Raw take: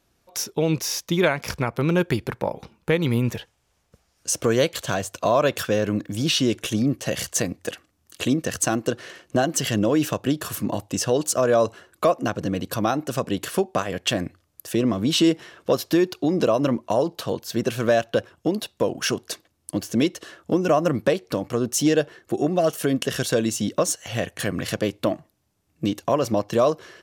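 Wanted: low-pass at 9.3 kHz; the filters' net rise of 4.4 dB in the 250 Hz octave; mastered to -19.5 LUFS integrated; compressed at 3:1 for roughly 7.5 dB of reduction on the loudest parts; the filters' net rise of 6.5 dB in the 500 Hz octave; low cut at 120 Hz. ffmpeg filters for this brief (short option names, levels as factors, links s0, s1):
-af "highpass=120,lowpass=9300,equalizer=f=250:t=o:g=3.5,equalizer=f=500:t=o:g=7,acompressor=threshold=0.112:ratio=3,volume=1.68"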